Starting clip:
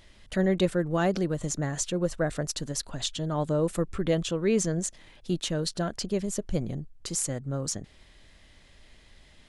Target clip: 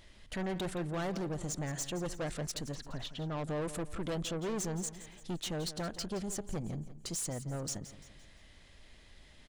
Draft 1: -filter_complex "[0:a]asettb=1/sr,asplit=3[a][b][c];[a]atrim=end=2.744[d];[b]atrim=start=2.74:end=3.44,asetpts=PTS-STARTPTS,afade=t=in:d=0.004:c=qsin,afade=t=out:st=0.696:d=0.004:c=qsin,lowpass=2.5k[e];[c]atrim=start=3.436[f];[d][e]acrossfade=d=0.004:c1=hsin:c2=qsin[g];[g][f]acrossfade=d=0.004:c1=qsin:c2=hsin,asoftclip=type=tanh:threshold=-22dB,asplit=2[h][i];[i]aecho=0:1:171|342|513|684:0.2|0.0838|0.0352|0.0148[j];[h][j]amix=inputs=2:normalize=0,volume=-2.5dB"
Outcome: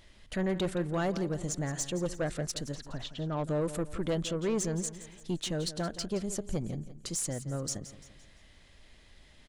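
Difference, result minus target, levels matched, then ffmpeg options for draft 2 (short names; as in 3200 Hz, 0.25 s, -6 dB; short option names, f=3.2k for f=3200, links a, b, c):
soft clip: distortion -7 dB
-filter_complex "[0:a]asettb=1/sr,asplit=3[a][b][c];[a]atrim=end=2.744[d];[b]atrim=start=2.74:end=3.44,asetpts=PTS-STARTPTS,afade=t=in:d=0.004:c=qsin,afade=t=out:st=0.696:d=0.004:c=qsin,lowpass=2.5k[e];[c]atrim=start=3.436[f];[d][e]acrossfade=d=0.004:c1=hsin:c2=qsin[g];[g][f]acrossfade=d=0.004:c1=qsin:c2=hsin,asoftclip=type=tanh:threshold=-30.5dB,asplit=2[h][i];[i]aecho=0:1:171|342|513|684:0.2|0.0838|0.0352|0.0148[j];[h][j]amix=inputs=2:normalize=0,volume=-2.5dB"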